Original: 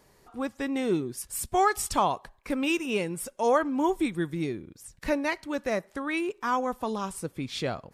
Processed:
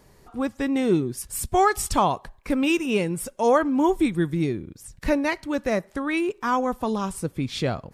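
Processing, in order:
low-shelf EQ 240 Hz +7.5 dB
level +3 dB

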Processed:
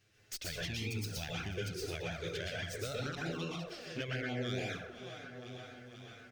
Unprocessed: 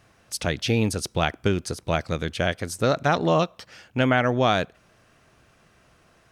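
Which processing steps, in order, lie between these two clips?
stylus tracing distortion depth 0.044 ms
noise gate −51 dBFS, range −11 dB
guitar amp tone stack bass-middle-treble 5-5-5
on a send: repeating echo 486 ms, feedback 56%, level −22.5 dB
on the sum: dense smooth reverb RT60 0.61 s, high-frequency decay 0.55×, pre-delay 105 ms, DRR −4.5 dB
in parallel at −9.5 dB: gain into a clipping stage and back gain 31 dB
on the sum: flanger swept by the level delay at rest 9.5 ms, full sweep at −23.5 dBFS
downward compressor 2.5 to 1, threshold −56 dBFS, peak gain reduction 18.5 dB
graphic EQ with 15 bands 400 Hz +10 dB, 1,000 Hz −12 dB, 10,000 Hz −9 dB
level +11 dB

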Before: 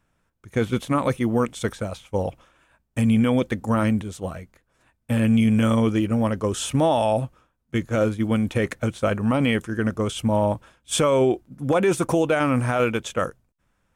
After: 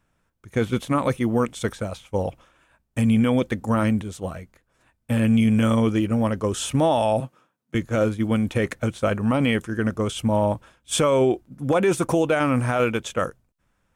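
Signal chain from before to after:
0:07.20–0:07.75: high-pass filter 140 Hz 24 dB per octave

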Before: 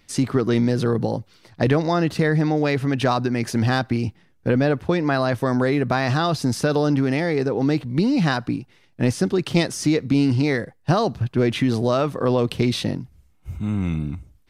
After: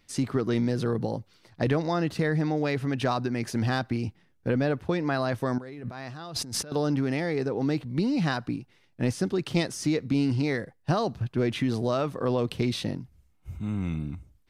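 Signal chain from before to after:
0:05.58–0:06.72: compressor whose output falls as the input rises −31 dBFS, ratio −1
level −6.5 dB

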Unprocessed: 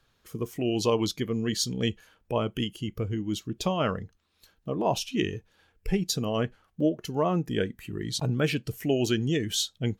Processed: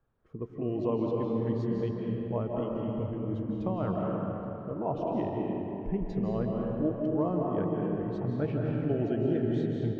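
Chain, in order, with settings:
low-pass filter 1,000 Hz 12 dB per octave
convolution reverb RT60 3.4 s, pre-delay 120 ms, DRR −2 dB
level −5.5 dB

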